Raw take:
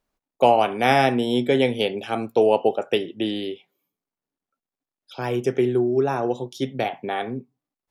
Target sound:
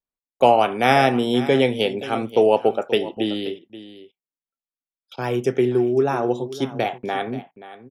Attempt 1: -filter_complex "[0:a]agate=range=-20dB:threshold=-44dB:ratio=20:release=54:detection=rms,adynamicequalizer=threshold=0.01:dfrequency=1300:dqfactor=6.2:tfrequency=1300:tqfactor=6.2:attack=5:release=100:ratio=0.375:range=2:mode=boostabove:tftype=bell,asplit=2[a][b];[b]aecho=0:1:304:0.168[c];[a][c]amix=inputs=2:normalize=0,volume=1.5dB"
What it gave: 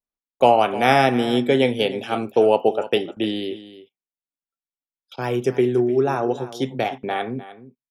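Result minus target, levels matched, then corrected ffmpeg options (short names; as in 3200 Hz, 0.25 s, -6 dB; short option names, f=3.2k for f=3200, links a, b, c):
echo 0.226 s early
-filter_complex "[0:a]agate=range=-20dB:threshold=-44dB:ratio=20:release=54:detection=rms,adynamicequalizer=threshold=0.01:dfrequency=1300:dqfactor=6.2:tfrequency=1300:tqfactor=6.2:attack=5:release=100:ratio=0.375:range=2:mode=boostabove:tftype=bell,asplit=2[a][b];[b]aecho=0:1:530:0.168[c];[a][c]amix=inputs=2:normalize=0,volume=1.5dB"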